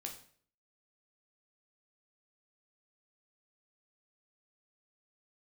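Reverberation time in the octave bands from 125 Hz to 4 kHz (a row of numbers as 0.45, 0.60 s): 0.65, 0.55, 0.55, 0.50, 0.50, 0.45 s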